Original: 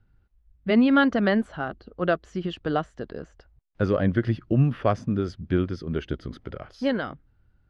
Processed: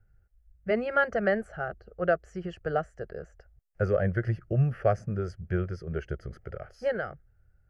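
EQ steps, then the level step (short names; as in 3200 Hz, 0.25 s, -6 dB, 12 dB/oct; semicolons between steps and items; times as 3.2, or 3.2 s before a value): bell 2400 Hz -5 dB 0.71 oct; fixed phaser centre 1000 Hz, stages 6; 0.0 dB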